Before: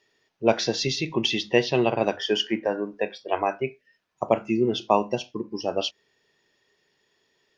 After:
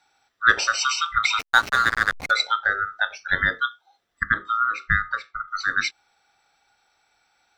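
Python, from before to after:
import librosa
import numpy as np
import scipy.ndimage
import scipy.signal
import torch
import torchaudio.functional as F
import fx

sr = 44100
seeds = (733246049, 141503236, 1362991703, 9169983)

y = fx.band_swap(x, sr, width_hz=1000)
y = fx.backlash(y, sr, play_db=-21.0, at=(1.39, 2.31))
y = fx.lowpass(y, sr, hz=1300.0, slope=6, at=(4.23, 5.48))
y = y * librosa.db_to_amplitude(3.0)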